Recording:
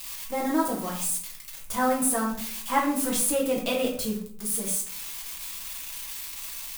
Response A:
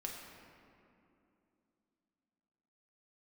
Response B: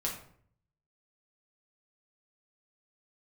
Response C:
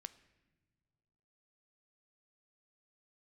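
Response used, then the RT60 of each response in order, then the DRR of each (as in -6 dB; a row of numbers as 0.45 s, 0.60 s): B; 2.8 s, 0.60 s, 1.9 s; -1.0 dB, -3.0 dB, 13.5 dB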